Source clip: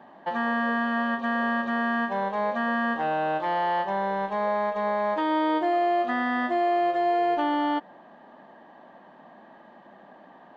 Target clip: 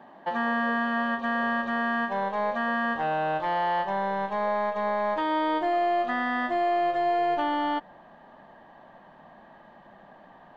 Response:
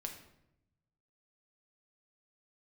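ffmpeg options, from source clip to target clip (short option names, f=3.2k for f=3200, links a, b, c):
-af "asubboost=boost=7.5:cutoff=94"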